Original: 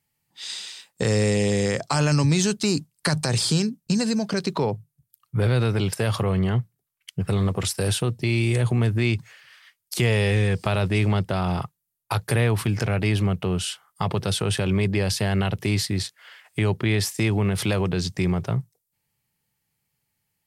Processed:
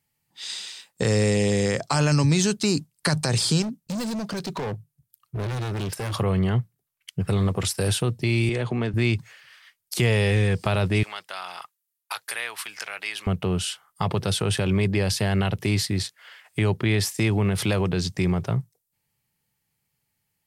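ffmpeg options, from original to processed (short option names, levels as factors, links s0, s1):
-filter_complex "[0:a]asettb=1/sr,asplit=3[s0][s1][s2];[s0]atrim=end=3.624[s3];[s1]atrim=start=3.62:end=6.14,asetpts=PTS-STARTPTS,afade=t=in:d=0.004:c=qsin,afade=t=out:st=2.516:d=0.004:c=qsin,asoftclip=type=hard:threshold=0.0473[s4];[s2]atrim=start=6.136[s5];[s3][s4]acrossfade=d=0.004:c1=hsin:c2=qsin[s6];[s6][s5]acrossfade=d=0.004:c1=qsin:c2=hsin,asettb=1/sr,asplit=3[s7][s8][s9];[s7]atrim=end=8.494[s10];[s8]atrim=start=8.49:end=8.94,asetpts=PTS-STARTPTS,afade=t=in:d=0.004:c=qsin,afade=t=out:st=0.446:d=0.004:c=qsin,highpass=180,lowpass=4700[s11];[s9]atrim=start=8.936[s12];[s10][s11]acrossfade=d=0.004:c1=hsin:c2=qsin[s13];[s13][s12]acrossfade=d=0.004:c1=qsin:c2=hsin,asettb=1/sr,asplit=3[s14][s15][s16];[s14]atrim=end=11.034[s17];[s15]atrim=start=11.03:end=13.27,asetpts=PTS-STARTPTS,afade=t=in:d=0.004:c=qsin,afade=t=out:st=2.236:d=0.004:c=qsin,highpass=1300[s18];[s16]atrim=start=13.266[s19];[s17][s18]acrossfade=d=0.004:c1=hsin:c2=qsin[s20];[s20][s19]acrossfade=d=0.004:c1=qsin:c2=hsin"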